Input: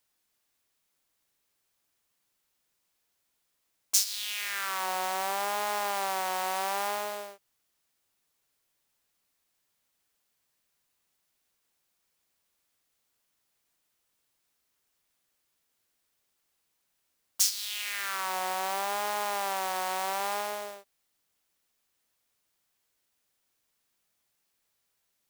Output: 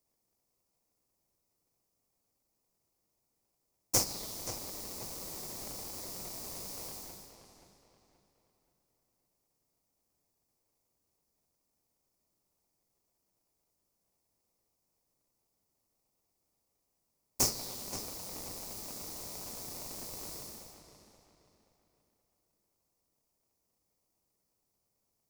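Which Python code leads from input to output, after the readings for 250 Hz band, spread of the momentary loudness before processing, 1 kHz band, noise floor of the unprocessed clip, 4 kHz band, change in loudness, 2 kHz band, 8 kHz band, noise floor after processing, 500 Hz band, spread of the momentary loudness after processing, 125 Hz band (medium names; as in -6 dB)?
+2.5 dB, 8 LU, -19.5 dB, -78 dBFS, -7.5 dB, -7.0 dB, -19.0 dB, -4.0 dB, -81 dBFS, -10.0 dB, 16 LU, no reading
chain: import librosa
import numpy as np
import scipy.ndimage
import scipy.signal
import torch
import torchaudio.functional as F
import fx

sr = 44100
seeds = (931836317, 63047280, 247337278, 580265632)

p1 = scipy.signal.sosfilt(scipy.signal.ellip(3, 1.0, 40, [140.0, 4900.0], 'bandstop', fs=sr, output='sos'), x)
p2 = fx.sample_hold(p1, sr, seeds[0], rate_hz=1600.0, jitter_pct=20)
p3 = p1 + (p2 * 10.0 ** (-5.5 / 20.0))
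p4 = fx.echo_filtered(p3, sr, ms=527, feedback_pct=37, hz=4900.0, wet_db=-9.5)
y = p4 * 10.0 ** (-3.5 / 20.0)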